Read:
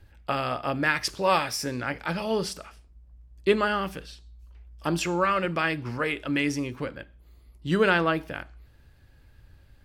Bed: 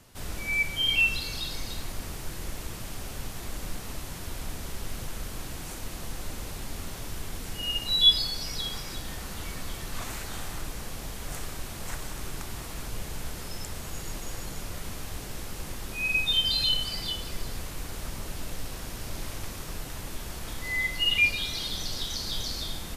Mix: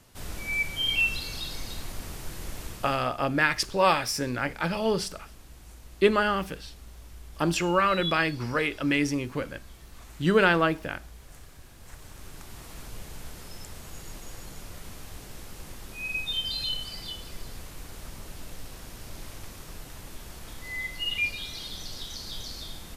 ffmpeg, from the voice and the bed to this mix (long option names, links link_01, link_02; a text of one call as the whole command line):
ffmpeg -i stem1.wav -i stem2.wav -filter_complex "[0:a]adelay=2550,volume=1dB[link_01];[1:a]volume=7.5dB,afade=type=out:start_time=2.67:duration=0.4:silence=0.223872,afade=type=in:start_time=11.78:duration=0.96:silence=0.354813[link_02];[link_01][link_02]amix=inputs=2:normalize=0" out.wav